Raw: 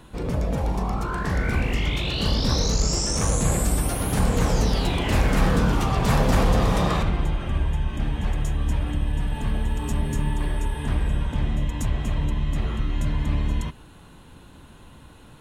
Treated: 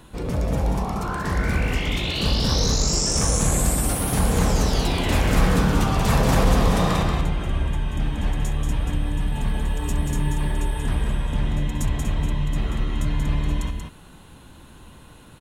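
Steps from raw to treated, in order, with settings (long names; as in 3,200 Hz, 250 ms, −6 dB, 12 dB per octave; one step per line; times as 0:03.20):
high-shelf EQ 5,800 Hz +4.5 dB
on a send: single-tap delay 184 ms −5 dB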